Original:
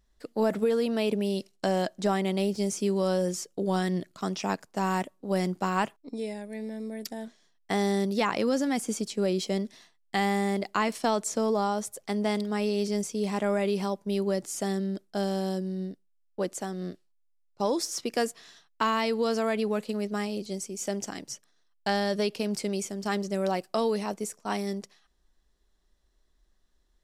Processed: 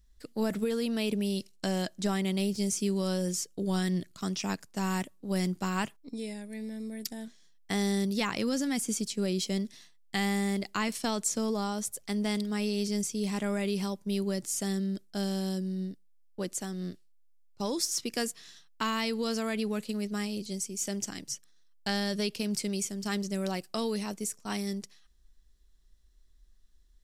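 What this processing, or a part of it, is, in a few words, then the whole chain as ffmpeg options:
smiley-face EQ: -af "lowshelf=f=83:g=9,equalizer=f=680:t=o:w=2.1:g=-9,highshelf=f=5200:g=4.5"

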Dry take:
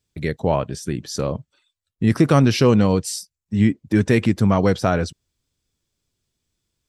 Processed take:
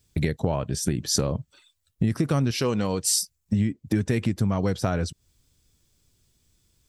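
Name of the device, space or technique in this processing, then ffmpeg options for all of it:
ASMR close-microphone chain: -filter_complex "[0:a]asettb=1/sr,asplit=3[s0][s1][s2];[s0]atrim=end=2.514[s3];[s1]atrim=start=2.51:end=3.03,asetpts=PTS-STARTPTS,afade=t=in:d=0.004:c=qsin,afade=t=out:st=0.516:d=0.004:c=qsin,lowshelf=f=260:g=-12[s4];[s2]atrim=start=3.026[s5];[s3][s4]acrossfade=d=0.004:c1=hsin:c2=qsin[s6];[s6][s5]acrossfade=d=0.004:c1=qsin:c2=hsin,lowshelf=f=170:g=7.5,acompressor=threshold=0.0447:ratio=6,highshelf=f=6000:g=7.5,volume=1.88"

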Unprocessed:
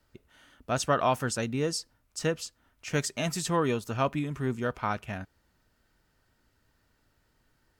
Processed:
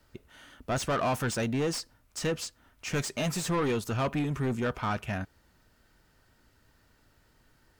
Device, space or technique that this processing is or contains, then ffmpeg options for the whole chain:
saturation between pre-emphasis and de-emphasis: -af "highshelf=f=4100:g=11.5,asoftclip=type=tanh:threshold=0.0335,highshelf=f=4100:g=-11.5,volume=1.88"

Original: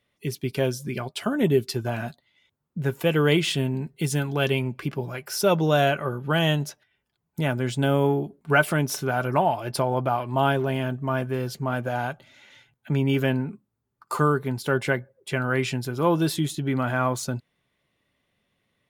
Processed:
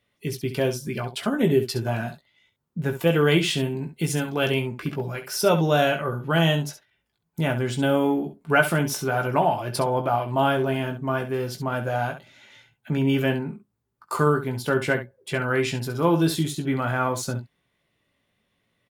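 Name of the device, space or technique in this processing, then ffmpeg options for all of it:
slapback doubling: -filter_complex "[0:a]asplit=3[s0][s1][s2];[s1]adelay=18,volume=0.447[s3];[s2]adelay=67,volume=0.299[s4];[s0][s3][s4]amix=inputs=3:normalize=0"

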